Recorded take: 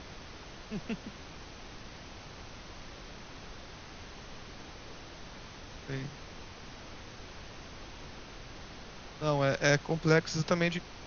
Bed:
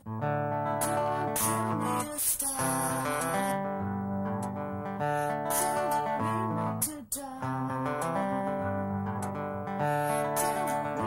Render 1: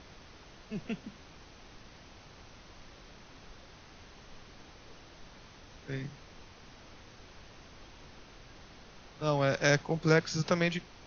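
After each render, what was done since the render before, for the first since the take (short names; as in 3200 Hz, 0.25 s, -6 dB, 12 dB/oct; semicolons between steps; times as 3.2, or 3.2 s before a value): noise print and reduce 6 dB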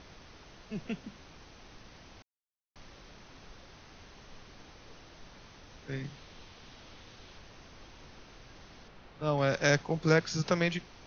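2.22–2.76 requantised 6-bit, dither none; 6.04–7.38 bell 3500 Hz +4.5 dB; 8.88–9.38 air absorption 160 m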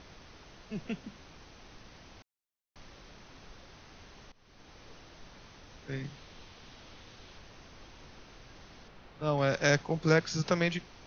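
4.32–4.78 fade in, from -22 dB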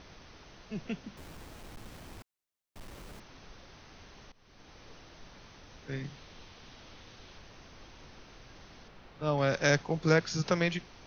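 1.17–3.2 half-waves squared off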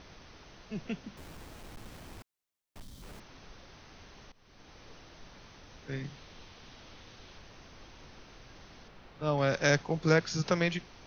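2.81–3.03 spectral gain 280–3000 Hz -12 dB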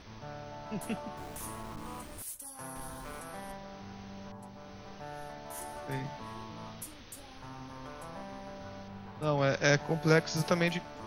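add bed -14.5 dB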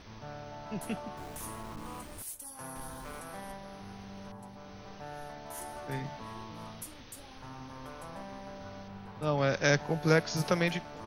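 echo 1.038 s -24 dB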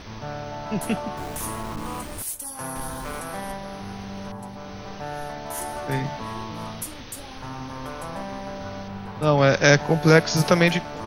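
gain +11 dB; limiter -3 dBFS, peak gain reduction 3 dB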